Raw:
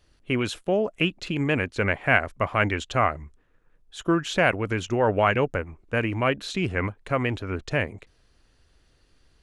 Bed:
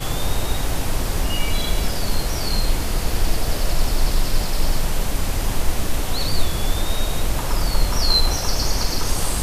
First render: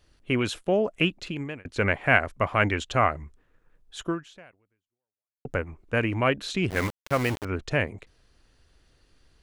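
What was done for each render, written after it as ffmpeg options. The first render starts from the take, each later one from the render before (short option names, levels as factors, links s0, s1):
-filter_complex "[0:a]asettb=1/sr,asplit=3[s0][s1][s2];[s0]atrim=end=6.704[s3];[s1]atrim=start=6.7:end=7.45,asetpts=PTS-STARTPTS,afade=t=in:d=0.004:c=qsin,afade=t=out:st=0.746:d=0.004:c=qsin,aeval=exprs='val(0)*gte(abs(val(0)),0.0335)':c=same[s4];[s2]atrim=start=7.446[s5];[s3][s4]acrossfade=d=0.004:c1=hsin:c2=qsin[s6];[s6][s5]acrossfade=d=0.004:c1=qsin:c2=hsin,asplit=3[s7][s8][s9];[s7]atrim=end=1.65,asetpts=PTS-STARTPTS,afade=t=out:st=1.09:d=0.56[s10];[s8]atrim=start=1.65:end=5.45,asetpts=PTS-STARTPTS,afade=t=in:d=0.004:c=hsin,afade=t=out:st=2.37:d=1.43:c=exp[s11];[s9]atrim=start=5.45,asetpts=PTS-STARTPTS,afade=t=in:d=0.004:c=hsin[s12];[s10][s11][s12]concat=n=3:v=0:a=1"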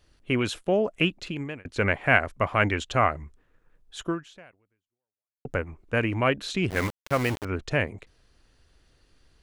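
-af anull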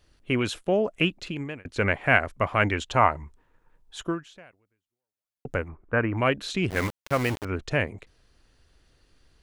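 -filter_complex "[0:a]asettb=1/sr,asplit=3[s0][s1][s2];[s0]atrim=end=2.884[s3];[s1]atrim=start=2.88:end=3.99,asetpts=PTS-STARTPTS,afade=t=in:d=0.004:c=qsin,afade=t=out:st=1.106:d=0.004:c=qsin,equalizer=f=920:w=5.4:g=11.5[s4];[s2]atrim=start=3.986[s5];[s3][s4]acrossfade=d=0.004:c1=hsin:c2=qsin[s6];[s6][s5]acrossfade=d=0.004:c1=qsin:c2=hsin,asplit=3[s7][s8][s9];[s7]afade=t=out:st=5.68:d=0.02[s10];[s8]lowpass=f=1400:t=q:w=1.7,afade=t=in:st=5.68:d=0.02,afade=t=out:st=6.16:d=0.02[s11];[s9]afade=t=in:st=6.16:d=0.02[s12];[s10][s11][s12]amix=inputs=3:normalize=0"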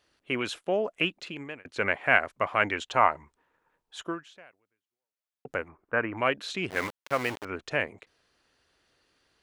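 -af "highpass=f=540:p=1,highshelf=f=4900:g=-6"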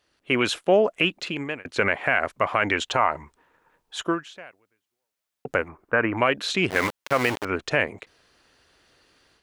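-af "alimiter=limit=0.15:level=0:latency=1:release=72,dynaudnorm=f=170:g=3:m=2.82"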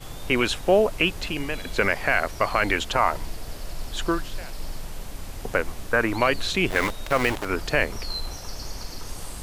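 -filter_complex "[1:a]volume=0.2[s0];[0:a][s0]amix=inputs=2:normalize=0"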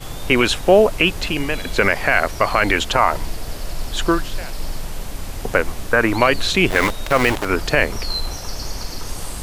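-af "volume=2.24,alimiter=limit=0.794:level=0:latency=1"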